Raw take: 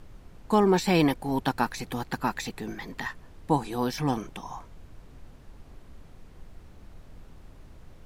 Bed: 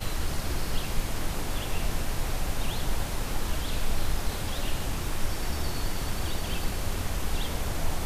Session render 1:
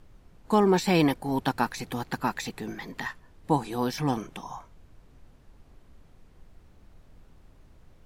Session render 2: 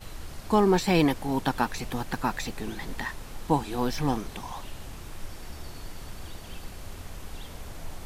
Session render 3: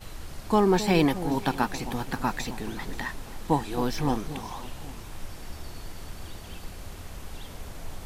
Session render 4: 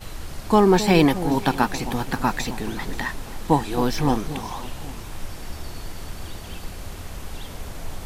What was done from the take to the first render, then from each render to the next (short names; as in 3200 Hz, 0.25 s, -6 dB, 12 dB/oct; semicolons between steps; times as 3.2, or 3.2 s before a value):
noise print and reduce 6 dB
add bed -10.5 dB
echo with dull and thin repeats by turns 0.266 s, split 810 Hz, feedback 55%, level -11 dB
gain +5.5 dB